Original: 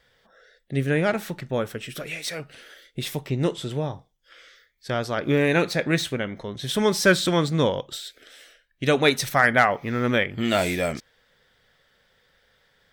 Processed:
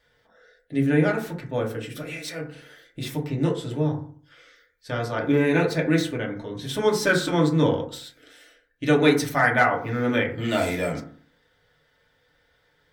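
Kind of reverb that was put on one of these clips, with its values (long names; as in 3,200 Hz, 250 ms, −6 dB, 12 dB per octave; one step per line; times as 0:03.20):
feedback delay network reverb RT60 0.49 s, low-frequency decay 1.2×, high-frequency decay 0.3×, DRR −2 dB
level −5.5 dB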